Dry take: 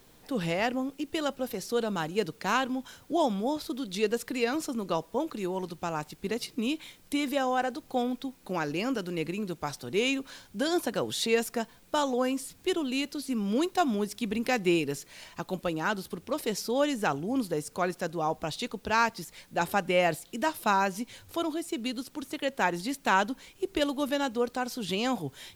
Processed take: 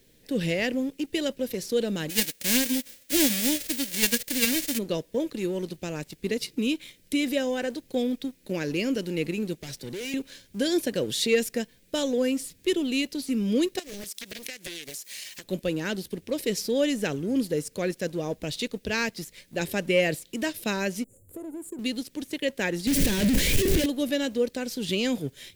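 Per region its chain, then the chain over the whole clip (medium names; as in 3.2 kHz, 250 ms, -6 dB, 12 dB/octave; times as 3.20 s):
2.09–4.77 s: formants flattened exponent 0.1 + comb 3.6 ms, depth 43%
9.62–10.14 s: overload inside the chain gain 36 dB + three bands compressed up and down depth 40%
13.79–15.44 s: tilt EQ +4.5 dB/octave + compression 8:1, threshold -36 dBFS + loudspeaker Doppler distortion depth 1 ms
21.04–21.79 s: Chebyshev band-stop 750–7300 Hz, order 5 + compression 4:1, threshold -37 dBFS
22.87–23.86 s: one-bit comparator + bass shelf 200 Hz +12 dB
whole clip: high-order bell 1 kHz -15.5 dB 1.2 oct; waveshaping leveller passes 1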